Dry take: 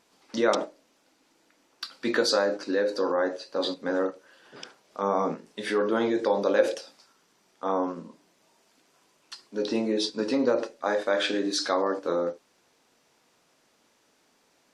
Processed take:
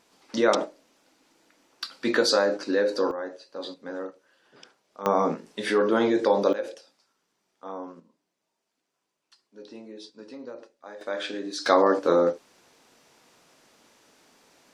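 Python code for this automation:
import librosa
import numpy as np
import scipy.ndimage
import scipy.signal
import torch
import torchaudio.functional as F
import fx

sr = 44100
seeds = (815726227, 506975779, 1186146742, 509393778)

y = fx.gain(x, sr, db=fx.steps((0.0, 2.0), (3.11, -8.0), (5.06, 3.0), (6.53, -10.0), (8.0, -16.5), (11.01, -6.0), (11.66, 6.5)))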